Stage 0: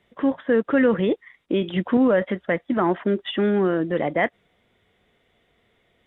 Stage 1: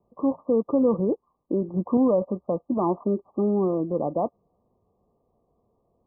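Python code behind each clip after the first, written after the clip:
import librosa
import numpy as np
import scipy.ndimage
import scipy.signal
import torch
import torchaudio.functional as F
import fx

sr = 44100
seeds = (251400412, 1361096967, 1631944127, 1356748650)

y = scipy.signal.sosfilt(scipy.signal.cheby1(10, 1.0, 1200.0, 'lowpass', fs=sr, output='sos'), x)
y = y * 10.0 ** (-2.0 / 20.0)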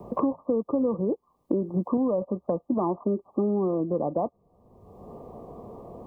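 y = fx.band_squash(x, sr, depth_pct=100)
y = y * 10.0 ** (-2.5 / 20.0)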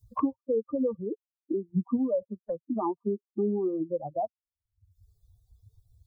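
y = fx.bin_expand(x, sr, power=3.0)
y = y * 10.0 ** (2.5 / 20.0)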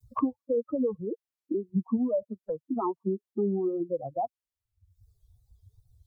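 y = fx.wow_flutter(x, sr, seeds[0], rate_hz=2.1, depth_cents=110.0)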